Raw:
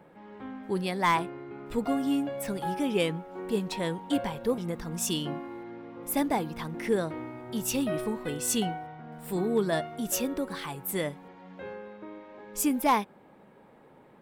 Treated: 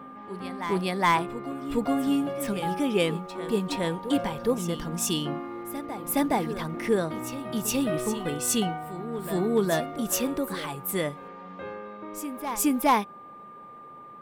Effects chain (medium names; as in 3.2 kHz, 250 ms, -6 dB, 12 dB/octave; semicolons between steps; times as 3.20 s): reverse echo 417 ms -11.5 dB; whistle 1.2 kHz -46 dBFS; trim +2.5 dB